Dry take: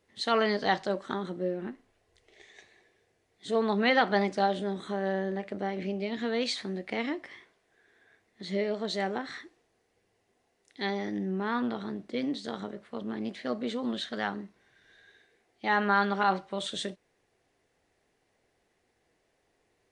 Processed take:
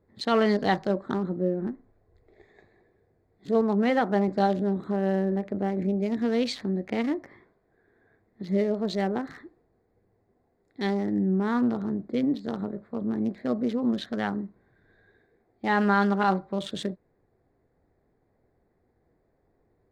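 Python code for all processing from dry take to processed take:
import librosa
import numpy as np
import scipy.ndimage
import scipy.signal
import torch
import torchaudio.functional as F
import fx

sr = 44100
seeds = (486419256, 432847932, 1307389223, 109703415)

y = fx.chain(x, sr, fx.highpass(hz=910.0, slope=6),
    fx.tilt_eq(slope=-4.5), at=(3.61, 4.28))
y = fx.wiener(y, sr, points=15)
y = fx.low_shelf(y, sr, hz=350.0, db=11.0)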